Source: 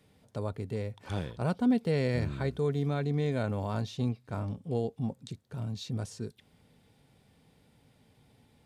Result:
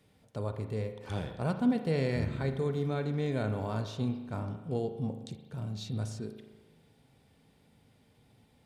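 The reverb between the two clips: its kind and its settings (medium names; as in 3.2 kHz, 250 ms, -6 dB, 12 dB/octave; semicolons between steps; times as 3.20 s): spring tank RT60 1.2 s, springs 37 ms, chirp 30 ms, DRR 7 dB; trim -1.5 dB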